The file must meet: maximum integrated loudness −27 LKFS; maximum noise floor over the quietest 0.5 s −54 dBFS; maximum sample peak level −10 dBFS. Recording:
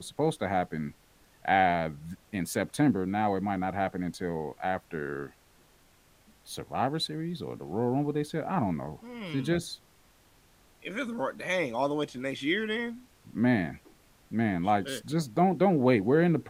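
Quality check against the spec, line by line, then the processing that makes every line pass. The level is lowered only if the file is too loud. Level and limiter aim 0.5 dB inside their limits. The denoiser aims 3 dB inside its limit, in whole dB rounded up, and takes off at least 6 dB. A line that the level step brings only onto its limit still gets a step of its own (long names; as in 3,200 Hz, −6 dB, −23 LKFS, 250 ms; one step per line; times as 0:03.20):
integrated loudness −29.5 LKFS: in spec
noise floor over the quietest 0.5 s −62 dBFS: in spec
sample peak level −9.0 dBFS: out of spec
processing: brickwall limiter −10.5 dBFS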